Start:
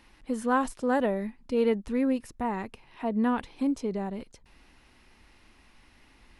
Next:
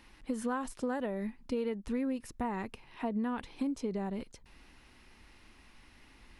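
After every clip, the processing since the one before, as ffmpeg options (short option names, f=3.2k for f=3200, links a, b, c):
-af "equalizer=f=660:w=1.5:g=-2,acompressor=threshold=-30dB:ratio=12"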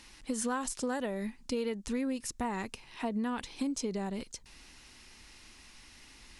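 -af "equalizer=f=6.9k:w=0.58:g=14.5"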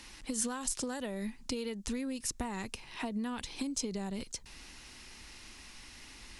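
-filter_complex "[0:a]acrossover=split=150|3000[a][b][c];[b]acompressor=threshold=-41dB:ratio=4[d];[a][d][c]amix=inputs=3:normalize=0,volume=3.5dB"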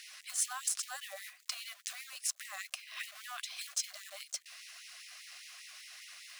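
-af "acrusher=bits=3:mode=log:mix=0:aa=0.000001,asuperstop=centerf=900:order=8:qfactor=3.9,afftfilt=real='re*gte(b*sr/1024,540*pow(1900/540,0.5+0.5*sin(2*PI*5*pts/sr)))':imag='im*gte(b*sr/1024,540*pow(1900/540,0.5+0.5*sin(2*PI*5*pts/sr)))':win_size=1024:overlap=0.75,volume=1.5dB"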